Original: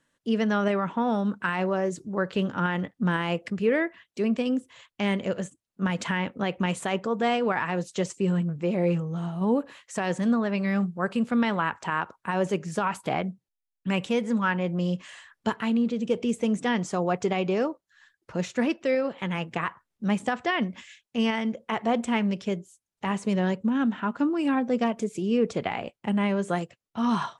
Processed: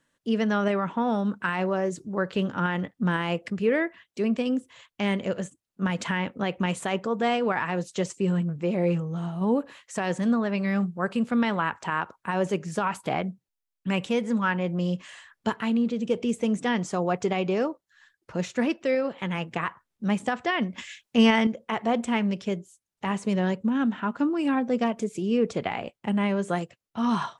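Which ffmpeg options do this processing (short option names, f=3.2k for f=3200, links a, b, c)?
-filter_complex "[0:a]asettb=1/sr,asplit=3[a][b][c];[a]atrim=end=20.784[d];[b]atrim=start=20.78:end=21.47,asetpts=PTS-STARTPTS,afade=t=in:d=0.004:c=qsin,afade=t=out:st=0.686:d=0.004:c=qsin,acontrast=74[e];[c]atrim=start=21.466[f];[d][e]acrossfade=d=0.004:c1=hsin:c2=qsin[g];[g][f]acrossfade=d=0.004:c1=qsin:c2=hsin"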